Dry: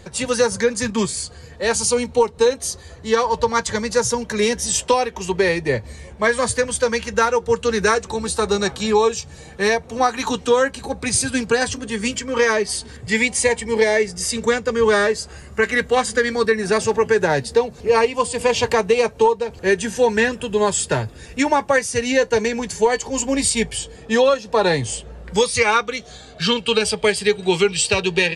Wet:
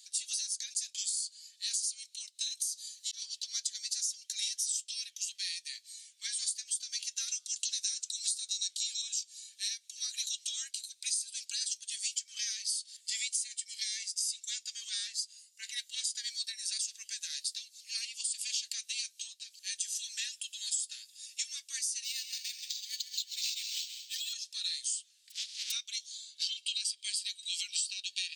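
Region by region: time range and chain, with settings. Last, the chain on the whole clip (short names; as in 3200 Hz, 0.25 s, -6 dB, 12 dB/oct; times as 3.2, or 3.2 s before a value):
2.57–3.22 tilt +2.5 dB/oct + auto swell 0.385 s + compressor 4:1, threshold -25 dBFS
7.28–9.02 LPF 8700 Hz + tilt +3.5 dB/oct + de-hum 87.83 Hz, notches 17
14.89–16.15 dynamic EQ 8600 Hz, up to -3 dB, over -41 dBFS, Q 0.87 + three-band expander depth 70%
22.04–24.33 Butterworth band-pass 4200 Hz, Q 0.61 + multi-head echo 67 ms, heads second and third, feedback 43%, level -12 dB + decimation joined by straight lines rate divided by 4×
25.3–25.7 spectral contrast lowered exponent 0.15 + tape spacing loss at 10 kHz 34 dB
whole clip: inverse Chebyshev high-pass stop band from 880 Hz, stop band 70 dB; compressor 10:1, threshold -31 dBFS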